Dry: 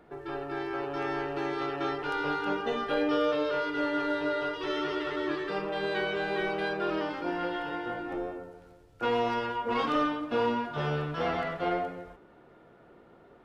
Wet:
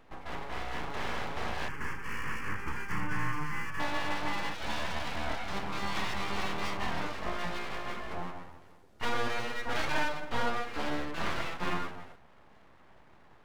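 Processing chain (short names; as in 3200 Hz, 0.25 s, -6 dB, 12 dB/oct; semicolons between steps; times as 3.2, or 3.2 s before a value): full-wave rectifier; 1.68–3.8 fixed phaser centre 1600 Hz, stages 4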